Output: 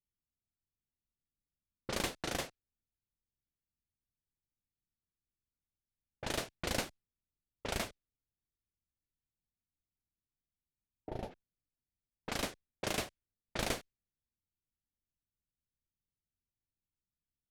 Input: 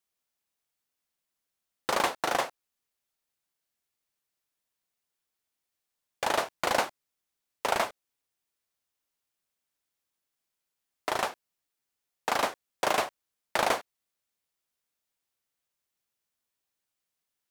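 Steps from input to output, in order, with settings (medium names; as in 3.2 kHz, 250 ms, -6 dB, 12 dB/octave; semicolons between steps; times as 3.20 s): time-frequency box 8.96–11.31 s, 930–10000 Hz -14 dB; level-controlled noise filter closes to 390 Hz, open at -24 dBFS; amplifier tone stack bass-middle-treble 10-0-1; trim +17 dB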